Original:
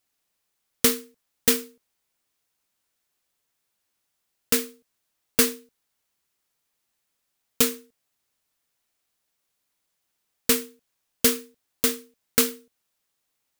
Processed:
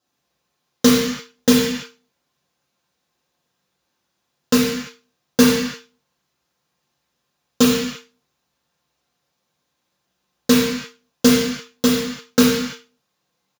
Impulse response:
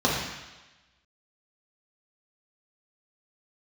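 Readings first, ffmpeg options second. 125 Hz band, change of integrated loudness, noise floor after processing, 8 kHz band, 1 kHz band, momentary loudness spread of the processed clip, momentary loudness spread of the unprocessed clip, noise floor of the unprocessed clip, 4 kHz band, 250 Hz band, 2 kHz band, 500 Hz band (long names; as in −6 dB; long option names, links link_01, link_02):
+15.0 dB, +5.0 dB, −75 dBFS, +1.0 dB, +10.0 dB, 13 LU, 11 LU, −78 dBFS, +6.5 dB, +15.0 dB, +6.5 dB, +9.0 dB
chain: -filter_complex "[0:a]aecho=1:1:5.7:0.34[link_01];[1:a]atrim=start_sample=2205,afade=type=out:start_time=0.4:duration=0.01,atrim=end_sample=18081[link_02];[link_01][link_02]afir=irnorm=-1:irlink=0,volume=-7.5dB"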